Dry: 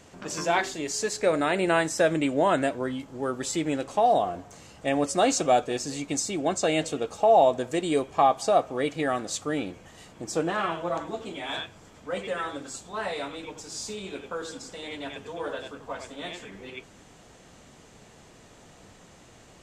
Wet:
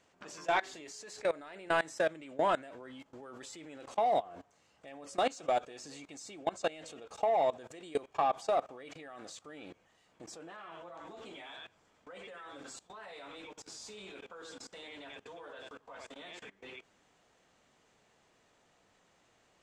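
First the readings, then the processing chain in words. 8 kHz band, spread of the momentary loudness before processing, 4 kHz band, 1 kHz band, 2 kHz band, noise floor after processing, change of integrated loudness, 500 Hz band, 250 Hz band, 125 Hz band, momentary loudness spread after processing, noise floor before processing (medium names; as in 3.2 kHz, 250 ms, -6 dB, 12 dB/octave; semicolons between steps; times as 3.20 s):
-16.5 dB, 15 LU, -11.5 dB, -9.0 dB, -9.0 dB, -70 dBFS, -9.0 dB, -10.0 dB, -17.5 dB, -18.5 dB, 19 LU, -53 dBFS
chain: overdrive pedal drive 10 dB, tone 3.9 kHz, clips at -9 dBFS; level held to a coarse grid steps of 21 dB; trim -6.5 dB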